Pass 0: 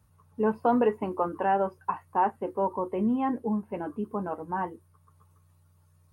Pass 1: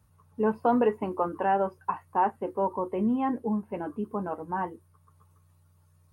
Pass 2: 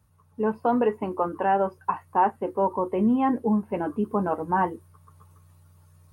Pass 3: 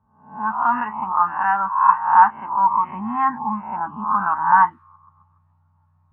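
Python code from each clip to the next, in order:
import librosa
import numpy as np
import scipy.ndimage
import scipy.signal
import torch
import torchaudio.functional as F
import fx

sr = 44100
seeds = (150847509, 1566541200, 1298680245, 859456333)

y1 = x
y2 = fx.rider(y1, sr, range_db=10, speed_s=2.0)
y2 = y2 * librosa.db_to_amplitude(3.5)
y3 = fx.spec_swells(y2, sr, rise_s=0.6)
y3 = fx.curve_eq(y3, sr, hz=(240.0, 480.0, 900.0), db=(0, -27, 13))
y3 = fx.envelope_lowpass(y3, sr, base_hz=580.0, top_hz=1400.0, q=2.1, full_db=-14.5, direction='up')
y3 = y3 * librosa.db_to_amplitude(-7.0)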